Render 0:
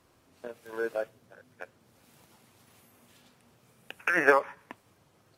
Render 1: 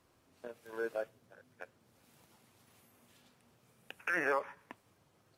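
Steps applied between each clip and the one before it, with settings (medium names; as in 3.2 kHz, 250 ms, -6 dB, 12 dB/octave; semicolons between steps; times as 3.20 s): peak limiter -15.5 dBFS, peak gain reduction 9.5 dB; trim -5.5 dB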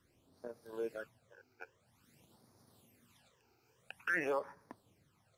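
phase shifter stages 12, 0.49 Hz, lowest notch 180–2900 Hz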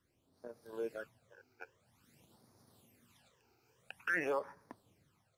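level rider gain up to 6 dB; trim -6 dB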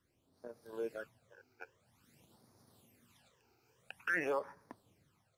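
no audible change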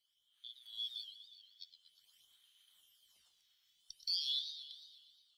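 four frequency bands reordered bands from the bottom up 3412; amplifier tone stack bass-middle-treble 5-5-5; modulated delay 119 ms, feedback 63%, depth 165 cents, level -10.5 dB; trim +4 dB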